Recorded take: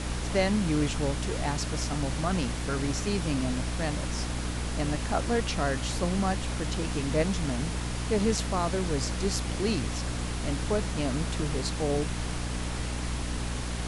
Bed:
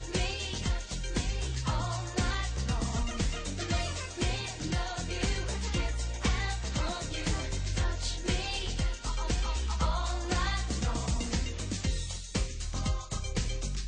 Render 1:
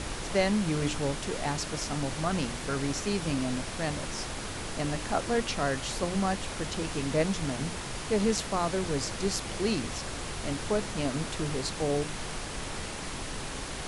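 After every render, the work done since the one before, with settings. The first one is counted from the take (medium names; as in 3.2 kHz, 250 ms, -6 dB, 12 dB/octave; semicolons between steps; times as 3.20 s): hum notches 60/120/180/240/300 Hz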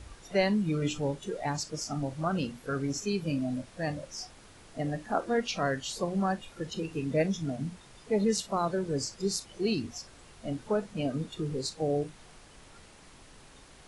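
noise print and reduce 17 dB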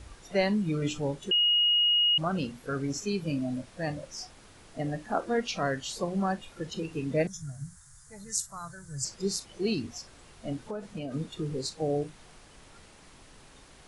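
1.31–2.18 s: bleep 2.88 kHz -20.5 dBFS; 7.27–9.05 s: FFT filter 140 Hz 0 dB, 210 Hz -21 dB, 410 Hz -26 dB, 620 Hz -20 dB, 1.6 kHz -2 dB, 2.6 kHz -22 dB, 4 kHz -11 dB, 7 kHz +7 dB; 10.67–11.12 s: compression, threshold -32 dBFS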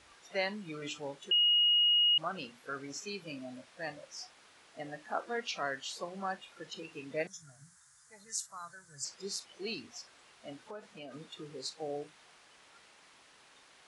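high-pass 1.3 kHz 6 dB/octave; treble shelf 6.5 kHz -11.5 dB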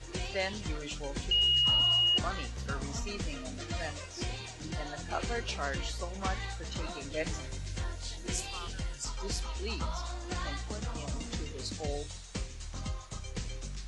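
add bed -6.5 dB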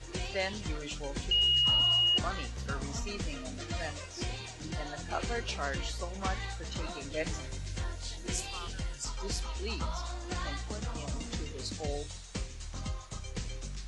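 no audible change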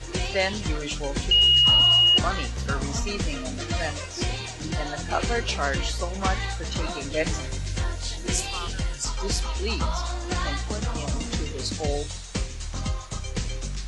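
trim +9 dB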